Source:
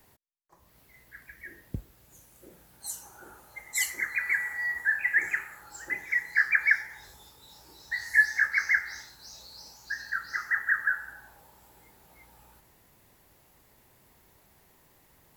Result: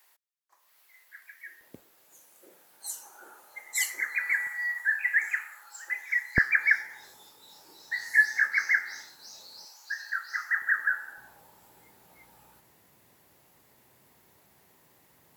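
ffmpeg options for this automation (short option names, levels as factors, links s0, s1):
-af "asetnsamples=n=441:p=0,asendcmd='1.61 highpass f 430;4.47 highpass f 980;6.38 highpass f 230;9.65 highpass f 780;10.62 highpass f 320;11.18 highpass f 110',highpass=1100"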